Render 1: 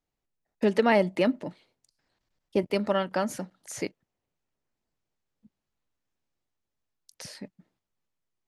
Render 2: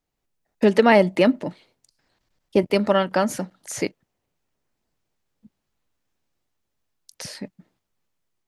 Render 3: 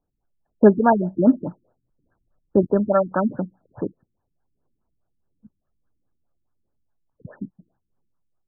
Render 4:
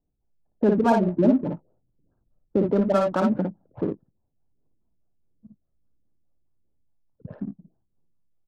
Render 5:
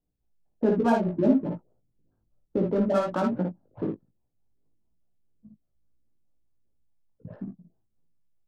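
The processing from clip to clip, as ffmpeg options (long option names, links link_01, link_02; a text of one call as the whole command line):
ffmpeg -i in.wav -af "dynaudnorm=framelen=120:gausssize=3:maxgain=3dB,volume=4dB" out.wav
ffmpeg -i in.wav -af "highshelf=frequency=5300:gain=11,aphaser=in_gain=1:out_gain=1:delay=1.7:decay=0.44:speed=1.5:type=triangular,afftfilt=real='re*lt(b*sr/1024,350*pow(1800/350,0.5+0.5*sin(2*PI*4.8*pts/sr)))':imag='im*lt(b*sr/1024,350*pow(1800/350,0.5+0.5*sin(2*PI*4.8*pts/sr)))':win_size=1024:overlap=0.75" out.wav
ffmpeg -i in.wav -filter_complex "[0:a]alimiter=limit=-11.5dB:level=0:latency=1:release=88,asplit=2[link_01][link_02];[link_02]aecho=0:1:56|75:0.668|0.15[link_03];[link_01][link_03]amix=inputs=2:normalize=0,adynamicsmooth=sensitivity=4.5:basefreq=690" out.wav
ffmpeg -i in.wav -af "flanger=delay=16.5:depth=2.6:speed=1.2" out.wav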